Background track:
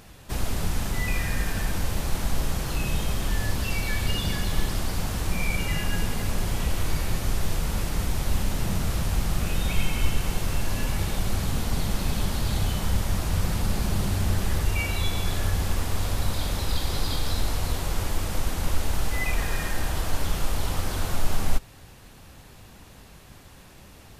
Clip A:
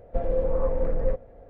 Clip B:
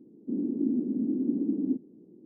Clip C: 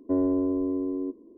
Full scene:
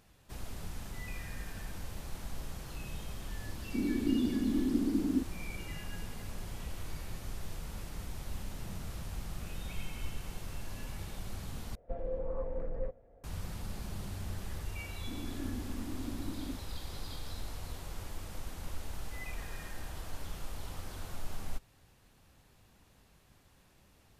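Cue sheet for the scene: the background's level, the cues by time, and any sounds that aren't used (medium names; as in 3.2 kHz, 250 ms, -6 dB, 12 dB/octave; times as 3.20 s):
background track -15.5 dB
3.46 s: add B -2.5 dB
11.75 s: replace with A -12 dB
14.79 s: add B -14 dB
not used: C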